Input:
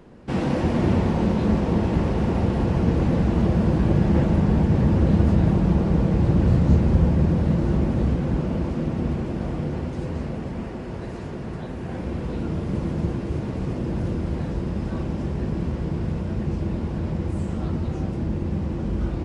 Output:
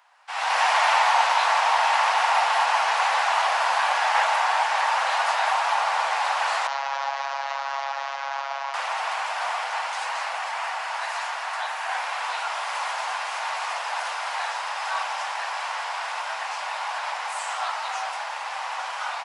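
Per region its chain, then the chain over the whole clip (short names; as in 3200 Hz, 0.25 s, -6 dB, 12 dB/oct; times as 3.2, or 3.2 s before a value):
6.67–8.74 CVSD 32 kbps + LPF 1800 Hz 6 dB/oct + robotiser 138 Hz
whole clip: steep high-pass 770 Hz 48 dB/oct; AGC gain up to 16 dB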